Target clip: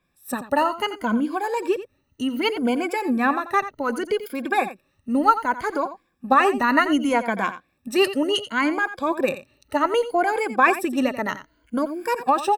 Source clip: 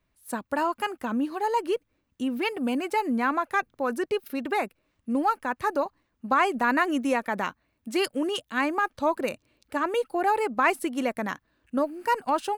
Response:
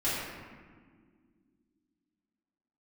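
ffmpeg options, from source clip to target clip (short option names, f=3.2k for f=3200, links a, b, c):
-filter_complex "[0:a]afftfilt=real='re*pow(10,14/40*sin(2*PI*(1.8*log(max(b,1)*sr/1024/100)/log(2)-(0.66)*(pts-256)/sr)))':imag='im*pow(10,14/40*sin(2*PI*(1.8*log(max(b,1)*sr/1024/100)/log(2)-(0.66)*(pts-256)/sr)))':win_size=1024:overlap=0.75,asplit=2[a][b];[b]aecho=0:1:87:0.224[c];[a][c]amix=inputs=2:normalize=0,adynamicequalizer=threshold=0.00501:dfrequency=6500:dqfactor=0.7:tfrequency=6500:tqfactor=0.7:attack=5:release=100:ratio=0.375:range=2:mode=cutabove:tftype=highshelf,volume=3dB"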